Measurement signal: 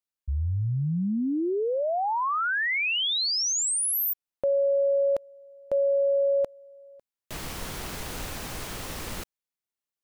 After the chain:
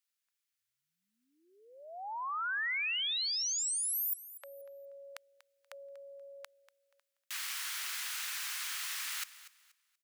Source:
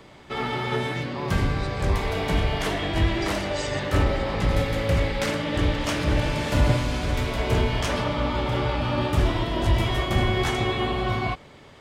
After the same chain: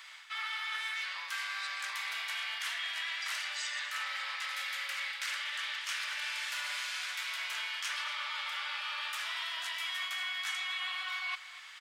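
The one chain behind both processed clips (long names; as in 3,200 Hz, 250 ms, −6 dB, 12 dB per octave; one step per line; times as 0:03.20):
high-pass filter 1,400 Hz 24 dB per octave
reversed playback
downward compressor 4 to 1, threshold −41 dBFS
reversed playback
repeating echo 240 ms, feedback 26%, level −16 dB
level +5 dB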